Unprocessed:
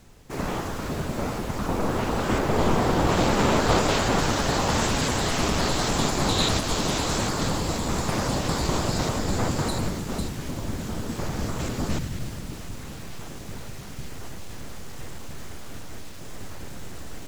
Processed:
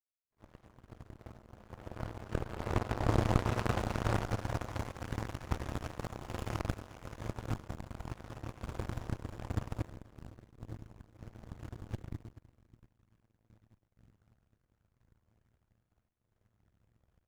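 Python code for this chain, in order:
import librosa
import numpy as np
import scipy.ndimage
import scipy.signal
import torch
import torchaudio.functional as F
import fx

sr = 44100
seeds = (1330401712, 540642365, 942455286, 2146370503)

y = fx.low_shelf_res(x, sr, hz=150.0, db=6.5, q=3.0)
y = fx.rev_fdn(y, sr, rt60_s=2.1, lf_ratio=0.9, hf_ratio=0.25, size_ms=28.0, drr_db=-2.0)
y = fx.power_curve(y, sr, exponent=3.0)
y = fx.running_max(y, sr, window=9)
y = y * librosa.db_to_amplitude(-8.0)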